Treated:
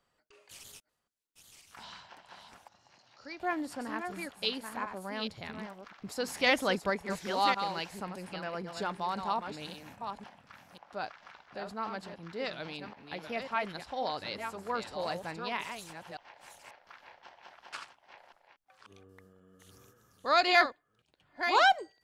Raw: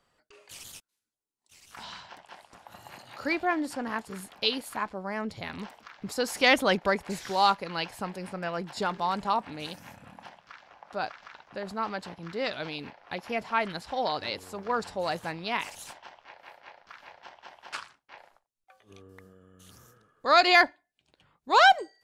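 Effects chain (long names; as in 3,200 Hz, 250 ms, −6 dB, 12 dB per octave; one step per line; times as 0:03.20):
delay that plays each chunk backwards 539 ms, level −7 dB
0:02.68–0:03.40: transistor ladder low-pass 6,100 Hz, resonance 70%
level −5.5 dB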